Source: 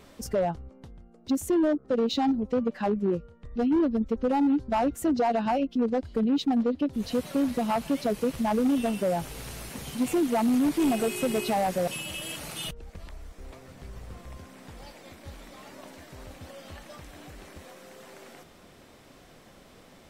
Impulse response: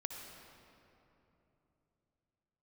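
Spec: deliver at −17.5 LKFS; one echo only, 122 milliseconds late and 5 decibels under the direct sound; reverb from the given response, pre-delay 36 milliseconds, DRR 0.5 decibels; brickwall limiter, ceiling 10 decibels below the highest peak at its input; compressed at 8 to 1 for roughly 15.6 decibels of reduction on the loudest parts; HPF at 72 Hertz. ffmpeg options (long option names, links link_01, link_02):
-filter_complex "[0:a]highpass=72,acompressor=threshold=-38dB:ratio=8,alimiter=level_in=10.5dB:limit=-24dB:level=0:latency=1,volume=-10.5dB,aecho=1:1:122:0.562,asplit=2[link_01][link_02];[1:a]atrim=start_sample=2205,adelay=36[link_03];[link_02][link_03]afir=irnorm=-1:irlink=0,volume=0.5dB[link_04];[link_01][link_04]amix=inputs=2:normalize=0,volume=22.5dB"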